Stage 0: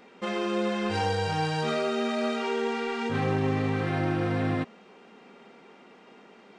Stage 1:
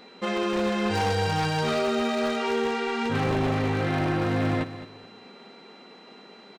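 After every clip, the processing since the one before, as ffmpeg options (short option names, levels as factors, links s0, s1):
-af "aeval=exprs='0.0841*(abs(mod(val(0)/0.0841+3,4)-2)-1)':c=same,aecho=1:1:213|426|639:0.211|0.055|0.0143,aeval=exprs='val(0)+0.00158*sin(2*PI*4000*n/s)':c=same,volume=1.41"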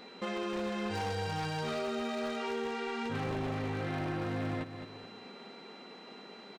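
-af "acompressor=threshold=0.0126:ratio=2,volume=0.841"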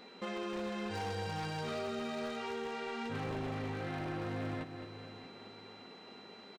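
-af "aecho=1:1:628|1256|1884:0.178|0.0551|0.0171,volume=0.668"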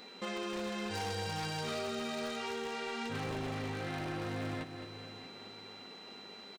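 -af "highshelf=f=3400:g=9.5"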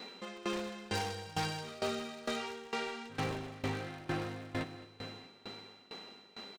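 -af "aeval=exprs='val(0)*pow(10,-20*if(lt(mod(2.2*n/s,1),2*abs(2.2)/1000),1-mod(2.2*n/s,1)/(2*abs(2.2)/1000),(mod(2.2*n/s,1)-2*abs(2.2)/1000)/(1-2*abs(2.2)/1000))/20)':c=same,volume=2"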